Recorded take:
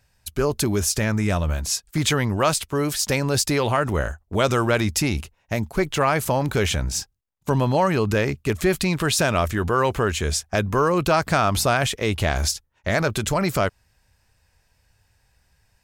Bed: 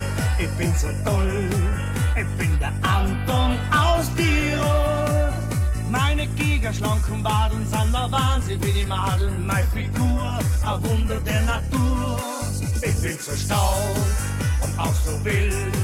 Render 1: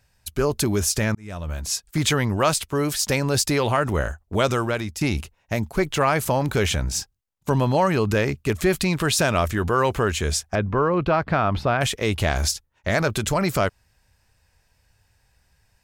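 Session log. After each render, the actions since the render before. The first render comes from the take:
0:01.15–0:01.83: fade in
0:04.38–0:05.01: fade out, to −12 dB
0:10.55–0:11.81: high-frequency loss of the air 350 metres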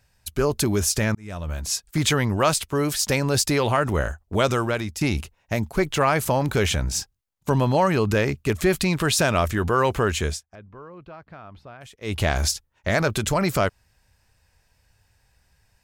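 0:10.25–0:12.17: duck −21.5 dB, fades 0.16 s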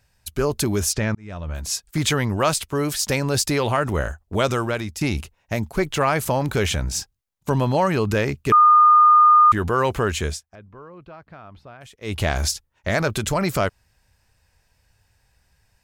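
0:00.93–0:01.55: high-frequency loss of the air 110 metres
0:08.52–0:09.52: beep over 1,220 Hz −9 dBFS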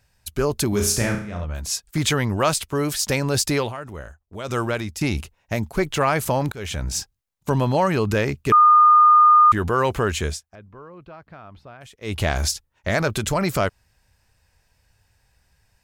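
0:00.69–0:01.45: flutter between parallel walls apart 5.8 metres, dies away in 0.48 s
0:03.59–0:04.58: duck −12.5 dB, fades 0.14 s
0:06.52–0:06.92: fade in, from −23.5 dB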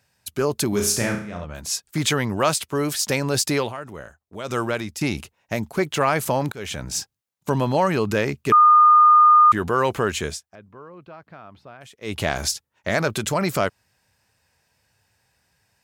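high-pass filter 130 Hz 12 dB per octave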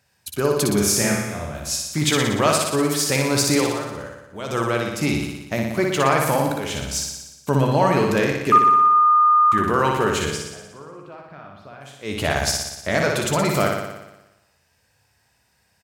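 double-tracking delay 14 ms −11.5 dB
flutter between parallel walls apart 10.2 metres, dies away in 1 s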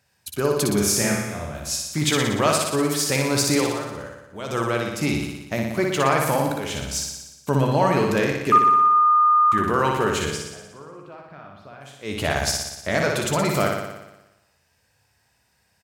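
level −1.5 dB

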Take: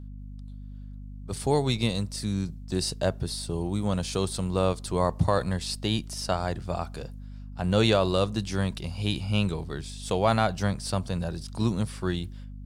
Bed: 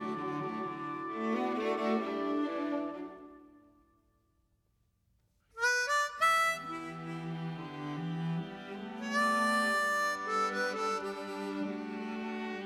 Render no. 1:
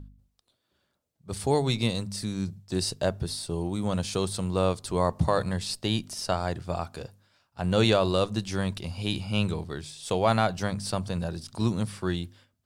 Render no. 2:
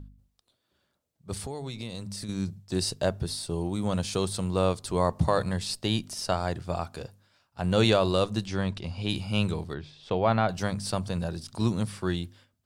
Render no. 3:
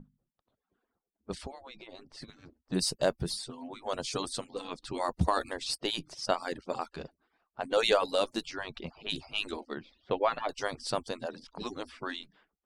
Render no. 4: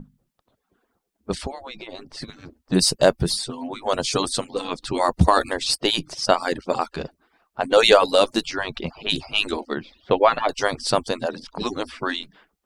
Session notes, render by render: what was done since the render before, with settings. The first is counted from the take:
hum removal 50 Hz, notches 5
0:01.38–0:02.29: downward compressor, threshold −33 dBFS; 0:08.46–0:09.09: high-frequency loss of the air 77 metres; 0:09.74–0:10.49: high-frequency loss of the air 250 metres
harmonic-percussive split with one part muted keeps percussive; low-pass that shuts in the quiet parts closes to 1,300 Hz, open at −28.5 dBFS
level +11.5 dB; brickwall limiter −1 dBFS, peak gain reduction 1 dB

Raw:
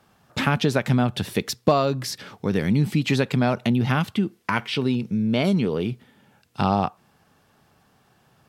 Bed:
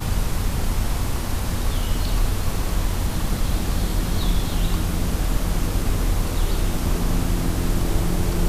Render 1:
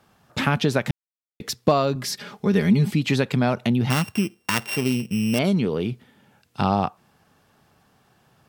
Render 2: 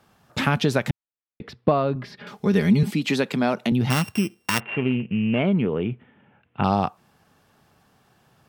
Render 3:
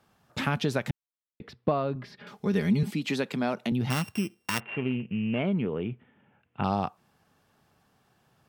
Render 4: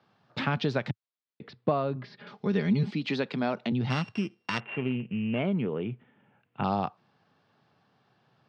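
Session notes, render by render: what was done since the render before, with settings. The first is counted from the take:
0:00.91–0:01.40: silence; 0:01.95–0:02.91: comb filter 4.9 ms, depth 82%; 0:03.90–0:05.39: samples sorted by size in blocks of 16 samples
0:00.90–0:02.27: high-frequency loss of the air 390 metres; 0:02.83–0:03.72: high-pass filter 170 Hz 24 dB per octave; 0:04.60–0:06.64: Butterworth low-pass 3,000 Hz 48 dB per octave
level −6.5 dB
Chebyshev band-pass filter 110–4,600 Hz, order 3

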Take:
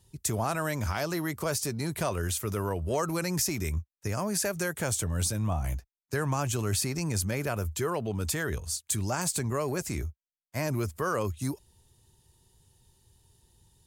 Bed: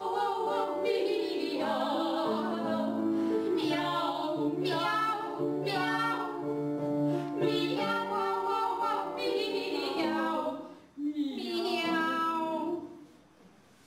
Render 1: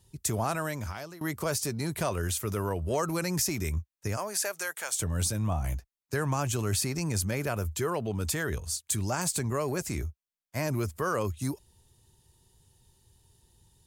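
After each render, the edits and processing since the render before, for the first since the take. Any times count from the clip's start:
0:00.50–0:01.21: fade out, to −20 dB
0:04.16–0:04.98: high-pass filter 410 Hz → 1,100 Hz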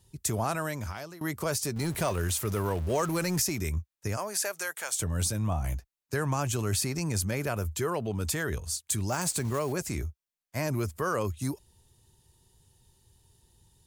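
0:01.76–0:03.42: converter with a step at zero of −38 dBFS
0:09.10–0:09.73: one scale factor per block 5 bits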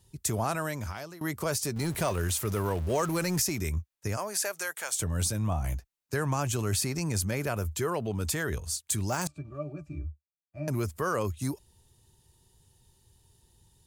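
0:09.27–0:10.68: resonances in every octave D, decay 0.11 s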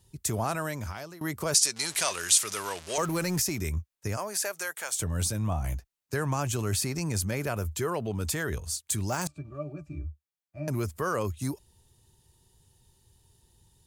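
0:01.54–0:02.98: meter weighting curve ITU-R 468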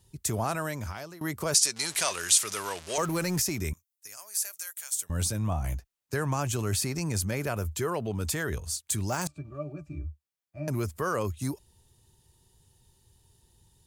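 0:03.73–0:05.10: first difference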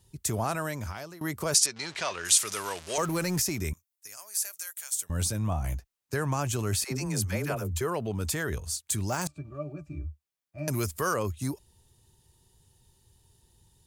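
0:01.66–0:02.25: high-frequency loss of the air 160 metres
0:06.84–0:07.81: all-pass dispersion lows, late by 80 ms, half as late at 400 Hz
0:10.58–0:11.14: high-shelf EQ 2,500 Hz +10 dB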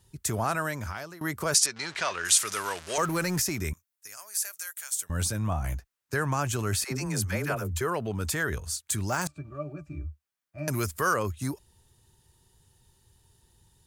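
parametric band 1,500 Hz +5.5 dB 0.95 octaves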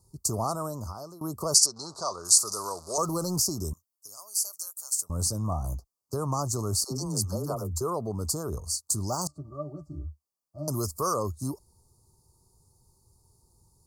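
Chebyshev band-stop filter 1,200–4,500 Hz, order 4
dynamic equaliser 5,500 Hz, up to +4 dB, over −41 dBFS, Q 0.72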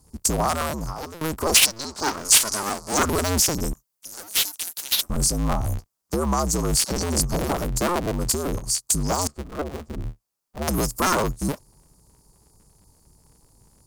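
sub-harmonics by changed cycles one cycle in 2, inverted
in parallel at −12 dB: sine wavefolder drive 10 dB, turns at −5 dBFS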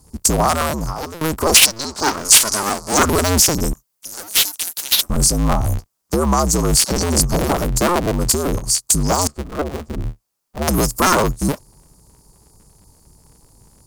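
level +6.5 dB
brickwall limiter −2 dBFS, peak gain reduction 1.5 dB

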